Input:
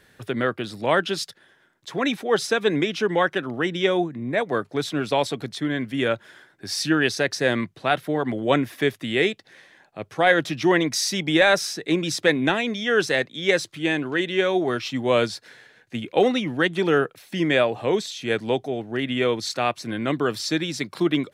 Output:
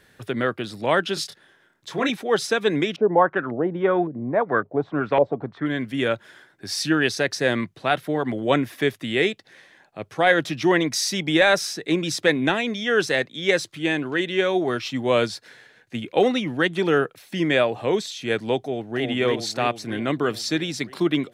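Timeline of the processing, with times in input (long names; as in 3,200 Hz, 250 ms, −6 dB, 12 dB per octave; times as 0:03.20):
0:01.14–0:02.10: double-tracking delay 26 ms −6 dB
0:02.96–0:05.66: auto-filter low-pass saw up 1.8 Hz 510–1,900 Hz
0:18.62–0:19.03: delay throw 320 ms, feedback 65%, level −3 dB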